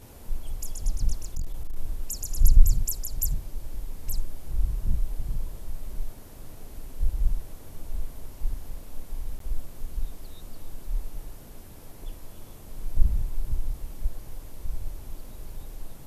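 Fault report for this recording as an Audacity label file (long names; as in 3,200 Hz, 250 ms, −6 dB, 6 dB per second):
1.220000	1.760000	clipping −24 dBFS
9.390000	9.400000	drop-out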